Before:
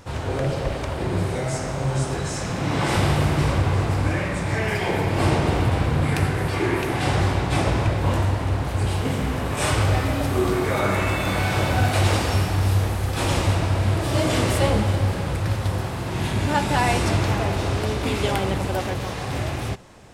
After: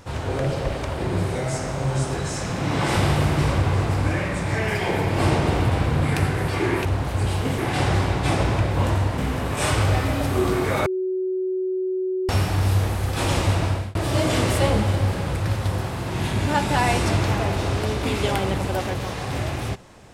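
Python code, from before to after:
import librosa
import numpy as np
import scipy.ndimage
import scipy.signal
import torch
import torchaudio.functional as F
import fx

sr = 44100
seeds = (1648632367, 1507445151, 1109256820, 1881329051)

y = fx.edit(x, sr, fx.move(start_s=8.45, length_s=0.73, to_s=6.85),
    fx.bleep(start_s=10.86, length_s=1.43, hz=373.0, db=-21.5),
    fx.fade_out_span(start_s=13.68, length_s=0.27), tone=tone)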